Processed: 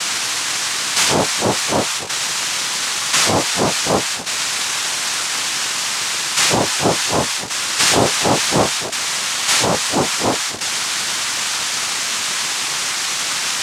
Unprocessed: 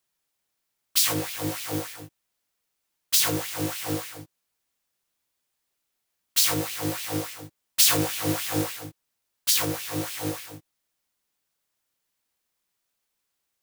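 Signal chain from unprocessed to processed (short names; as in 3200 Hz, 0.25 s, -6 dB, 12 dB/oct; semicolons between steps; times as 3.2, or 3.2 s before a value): switching spikes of -14.5 dBFS; sample leveller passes 5; noise vocoder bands 2; gain -4 dB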